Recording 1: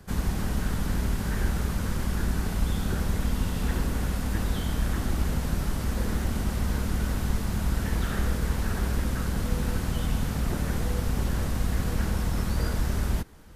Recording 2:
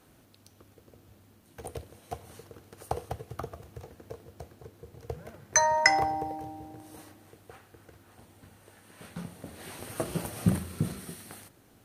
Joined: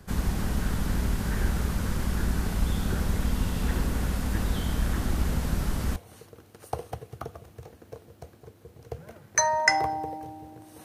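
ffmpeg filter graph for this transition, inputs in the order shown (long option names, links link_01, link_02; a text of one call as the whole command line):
ffmpeg -i cue0.wav -i cue1.wav -filter_complex "[0:a]apad=whole_dur=10.84,atrim=end=10.84,atrim=end=5.962[link_01];[1:a]atrim=start=2.138:end=7.02[link_02];[link_01][link_02]acrossfade=duration=0.004:curve1=hsin:curve2=hsin" out.wav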